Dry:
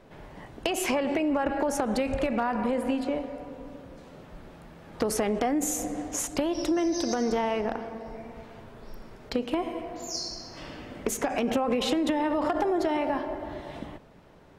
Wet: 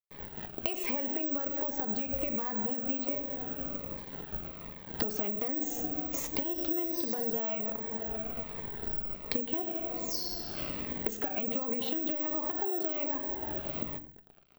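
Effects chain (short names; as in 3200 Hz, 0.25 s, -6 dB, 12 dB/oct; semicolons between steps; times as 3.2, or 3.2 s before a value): in parallel at -2 dB: vocal rider within 4 dB 2 s; on the sum: crossover distortion -41 dBFS; LPF 4900 Hz 12 dB/oct; notches 60/120/180/240/300 Hz; on a send at -11 dB: reverb RT60 0.35 s, pre-delay 5 ms; on the sum: careless resampling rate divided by 2×, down filtered, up zero stuff; compressor 5:1, threshold -33 dBFS, peak gain reduction 19 dB; cascading phaser falling 1.3 Hz; gain +3 dB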